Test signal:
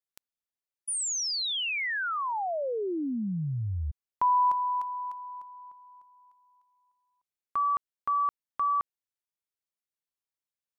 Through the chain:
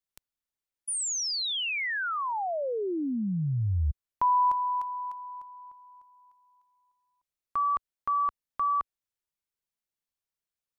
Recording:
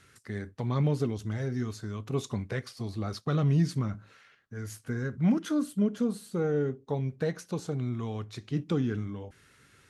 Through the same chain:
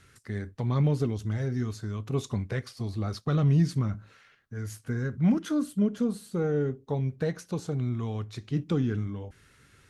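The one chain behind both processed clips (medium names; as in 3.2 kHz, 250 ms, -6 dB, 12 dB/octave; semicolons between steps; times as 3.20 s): bass shelf 84 Hz +10 dB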